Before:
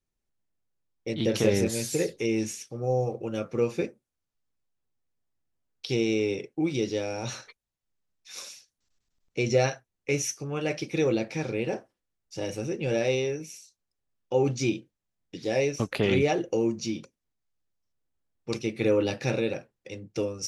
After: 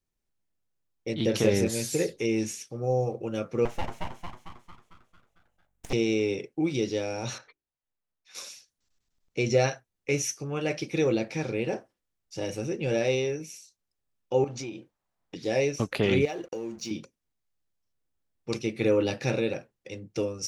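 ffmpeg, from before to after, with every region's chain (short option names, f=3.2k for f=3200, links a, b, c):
-filter_complex "[0:a]asettb=1/sr,asplit=3[a][b][c];[a]atrim=end=3.654[d];[b]atrim=start=3.65:end=5.93,asetpts=PTS-STARTPTS,afade=t=in:d=0.004:c=qsin,afade=t=out:st=2.276:d=0.004:c=qsin,equalizer=f=4.5k:t=o:w=0.43:g=-15,asplit=9[e][f][g][h][i][j][k][l][m];[f]adelay=225,afreqshift=47,volume=-3dB[n];[g]adelay=450,afreqshift=94,volume=-8.2dB[o];[h]adelay=675,afreqshift=141,volume=-13.4dB[p];[i]adelay=900,afreqshift=188,volume=-18.6dB[q];[j]adelay=1125,afreqshift=235,volume=-23.8dB[r];[k]adelay=1350,afreqshift=282,volume=-29dB[s];[l]adelay=1575,afreqshift=329,volume=-34.2dB[t];[m]adelay=1800,afreqshift=376,volume=-39.3dB[u];[e][n][o][p][q][r][s][t][u]amix=inputs=9:normalize=0,atrim=end_sample=100548,aeval=exprs='abs(val(0))':c=same[v];[c]atrim=start=5.926[w];[d][v]acrossfade=d=0.004:c1=hsin:c2=qsin[x];[x][w]acrossfade=d=0.004:c1=qsin:c2=hsin,asettb=1/sr,asplit=3[y][z][aa];[y]atrim=end=7.384[ab];[z]atrim=start=7.38:end=8.35,asetpts=PTS-STARTPTS,afade=t=in:d=0.004:c=qsin,afade=t=out:st=0.966:d=0.004:c=qsin,lowpass=f=1.4k:p=1,lowshelf=f=460:g=-8,bandreject=f=50:t=h:w=6,bandreject=f=100:t=h:w=6,bandreject=f=150:t=h:w=6,bandreject=f=200:t=h:w=6,bandreject=f=250:t=h:w=6,bandreject=f=300:t=h:w=6,bandreject=f=350:t=h:w=6,bandreject=f=400:t=h:w=6[ac];[aa]atrim=start=8.346[ad];[ab][ac]acrossfade=d=0.004:c1=hsin:c2=qsin[ae];[ae][ad]acrossfade=d=0.004:c1=qsin:c2=hsin,asettb=1/sr,asplit=3[af][ag][ah];[af]atrim=end=14.444[ai];[ag]atrim=start=14.44:end=15.36,asetpts=PTS-STARTPTS,afade=t=in:d=0.004:c=qsin,afade=t=out:st=0.916:d=0.004:c=qsin,equalizer=f=910:t=o:w=1.9:g=13,acompressor=threshold=-33dB:ratio=8:attack=3.2:release=140:knee=1:detection=peak[aj];[ah]atrim=start=15.356[ak];[ai][aj]acrossfade=d=0.004:c1=hsin:c2=qsin[al];[al][ak]acrossfade=d=0.004:c1=qsin:c2=hsin,asettb=1/sr,asplit=3[am][an][ao];[am]atrim=end=16.254[ap];[an]atrim=start=16.25:end=16.91,asetpts=PTS-STARTPTS,afade=t=in:d=0.004:c=qsin,afade=t=out:st=0.656:d=0.004:c=qsin,highpass=f=300:p=1,acompressor=threshold=-30dB:ratio=6:attack=3.2:release=140:knee=1:detection=peak,aeval=exprs='sgn(val(0))*max(abs(val(0))-0.002,0)':c=same[aq];[ao]atrim=start=16.906[ar];[ap][aq]acrossfade=d=0.004:c1=hsin:c2=qsin[as];[as][ar]acrossfade=d=0.004:c1=qsin:c2=hsin"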